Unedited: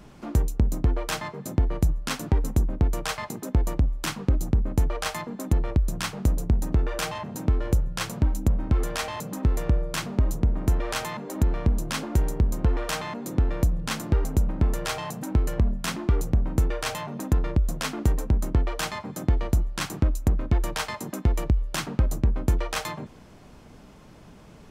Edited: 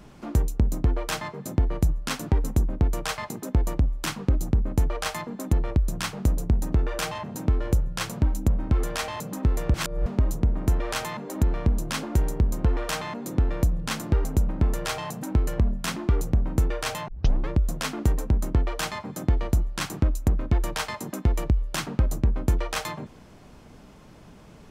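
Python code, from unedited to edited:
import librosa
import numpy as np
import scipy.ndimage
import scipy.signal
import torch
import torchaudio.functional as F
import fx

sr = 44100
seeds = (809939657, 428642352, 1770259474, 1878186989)

y = fx.edit(x, sr, fx.reverse_span(start_s=9.74, length_s=0.32),
    fx.tape_start(start_s=17.08, length_s=0.41), tone=tone)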